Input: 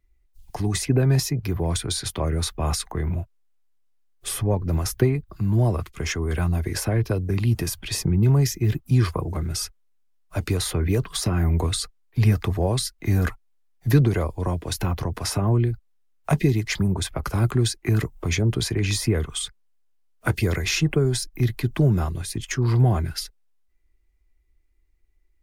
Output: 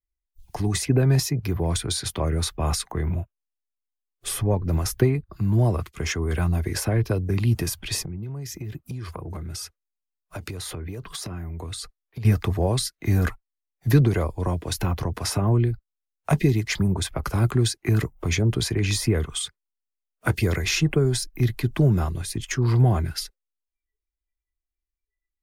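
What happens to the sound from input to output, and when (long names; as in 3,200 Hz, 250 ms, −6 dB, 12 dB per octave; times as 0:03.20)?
0:08.04–0:12.25: downward compressor 20 to 1, threshold −29 dBFS
whole clip: noise reduction from a noise print of the clip's start 23 dB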